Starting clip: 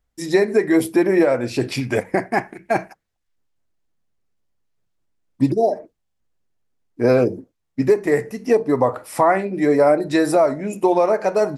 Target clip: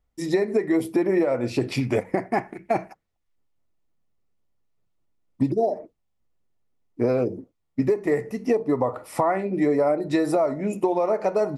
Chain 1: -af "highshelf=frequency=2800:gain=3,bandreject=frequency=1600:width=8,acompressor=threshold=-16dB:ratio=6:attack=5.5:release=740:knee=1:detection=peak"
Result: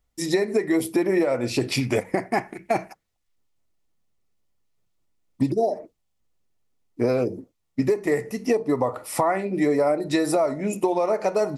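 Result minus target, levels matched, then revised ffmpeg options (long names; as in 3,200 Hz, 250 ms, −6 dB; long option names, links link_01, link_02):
4,000 Hz band +6.5 dB
-af "highshelf=frequency=2800:gain=-7,bandreject=frequency=1600:width=8,acompressor=threshold=-16dB:ratio=6:attack=5.5:release=740:knee=1:detection=peak"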